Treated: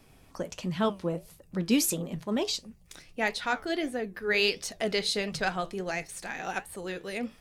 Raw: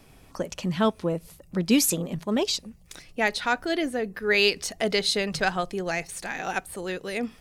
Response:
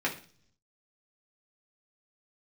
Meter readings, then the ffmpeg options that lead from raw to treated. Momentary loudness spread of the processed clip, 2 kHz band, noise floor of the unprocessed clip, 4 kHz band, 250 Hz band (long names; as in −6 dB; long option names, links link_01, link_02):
13 LU, −4.5 dB, −54 dBFS, −4.5 dB, −4.0 dB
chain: -af "flanger=delay=7.3:depth=6.2:regen=-73:speed=1.5:shape=triangular"